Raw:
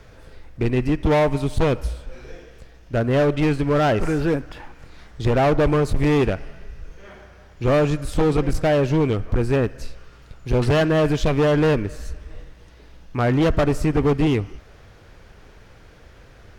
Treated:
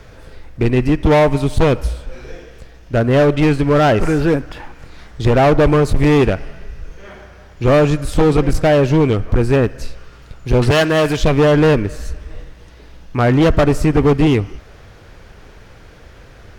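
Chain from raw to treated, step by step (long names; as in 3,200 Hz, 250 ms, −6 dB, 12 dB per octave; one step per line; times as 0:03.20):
0:10.71–0:11.17: spectral tilt +2 dB per octave
level +6 dB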